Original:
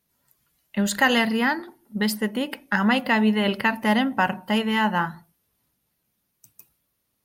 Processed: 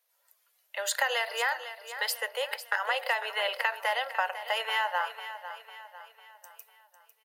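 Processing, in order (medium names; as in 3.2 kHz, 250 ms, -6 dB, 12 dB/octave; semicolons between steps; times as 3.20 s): Chebyshev high-pass 490 Hz, order 6; compression 5:1, threshold -25 dBFS, peak gain reduction 10 dB; feedback delay 500 ms, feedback 46%, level -12 dB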